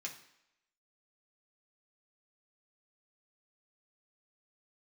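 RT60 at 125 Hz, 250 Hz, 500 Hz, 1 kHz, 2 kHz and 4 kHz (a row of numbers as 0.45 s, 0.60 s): 0.55 s, 0.70 s, 0.75 s, 0.85 s, 0.85 s, 0.75 s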